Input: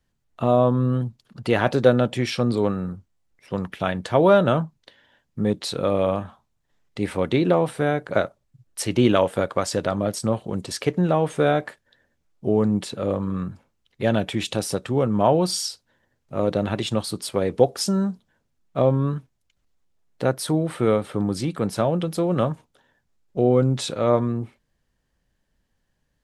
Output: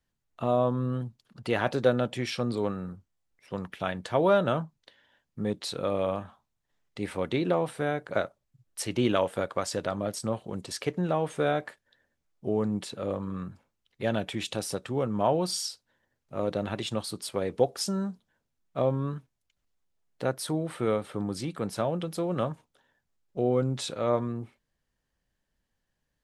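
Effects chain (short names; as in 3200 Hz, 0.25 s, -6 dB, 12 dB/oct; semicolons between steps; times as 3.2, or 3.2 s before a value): low shelf 440 Hz -3.5 dB; gain -5.5 dB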